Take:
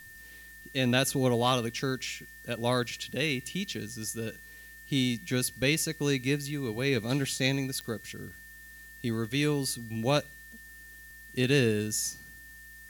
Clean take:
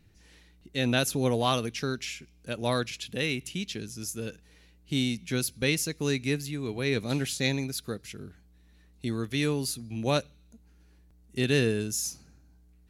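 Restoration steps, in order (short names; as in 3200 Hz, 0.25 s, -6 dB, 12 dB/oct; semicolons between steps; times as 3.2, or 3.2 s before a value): clip repair -12.5 dBFS; de-click; notch 1800 Hz, Q 30; noise print and reduce 9 dB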